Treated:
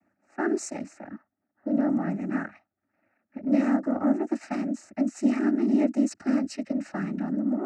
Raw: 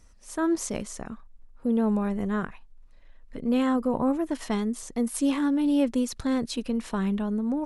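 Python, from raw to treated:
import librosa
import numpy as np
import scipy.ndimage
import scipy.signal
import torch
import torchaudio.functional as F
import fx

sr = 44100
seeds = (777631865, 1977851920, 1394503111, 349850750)

y = fx.env_lowpass(x, sr, base_hz=1200.0, full_db=-22.5)
y = fx.noise_vocoder(y, sr, seeds[0], bands=12)
y = fx.fixed_phaser(y, sr, hz=690.0, stages=8)
y = y * librosa.db_to_amplitude(2.0)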